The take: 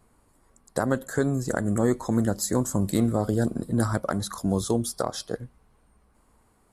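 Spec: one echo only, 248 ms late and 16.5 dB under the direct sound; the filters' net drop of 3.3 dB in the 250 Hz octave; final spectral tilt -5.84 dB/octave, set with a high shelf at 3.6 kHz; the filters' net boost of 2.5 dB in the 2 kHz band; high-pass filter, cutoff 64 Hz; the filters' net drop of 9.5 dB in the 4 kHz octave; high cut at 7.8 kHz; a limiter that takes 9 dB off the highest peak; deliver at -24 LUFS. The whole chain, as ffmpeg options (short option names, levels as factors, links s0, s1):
-af "highpass=64,lowpass=7800,equalizer=f=250:t=o:g=-4,equalizer=f=2000:t=o:g=6.5,highshelf=f=3600:g=-6.5,equalizer=f=4000:t=o:g=-8,alimiter=limit=0.141:level=0:latency=1,aecho=1:1:248:0.15,volume=2.11"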